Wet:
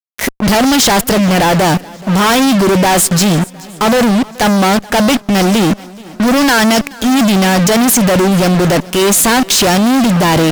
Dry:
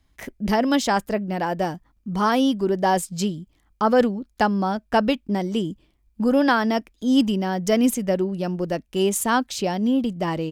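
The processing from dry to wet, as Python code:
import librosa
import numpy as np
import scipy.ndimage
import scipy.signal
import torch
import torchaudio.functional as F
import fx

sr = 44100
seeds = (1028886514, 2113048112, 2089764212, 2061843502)

y = fx.high_shelf(x, sr, hz=2300.0, db=8.5)
y = fx.transient(y, sr, attack_db=-9, sustain_db=3)
y = fx.fuzz(y, sr, gain_db=43.0, gate_db=-38.0)
y = fx.echo_swing(y, sr, ms=713, ratio=1.5, feedback_pct=30, wet_db=-22)
y = y * librosa.db_to_amplitude(4.5)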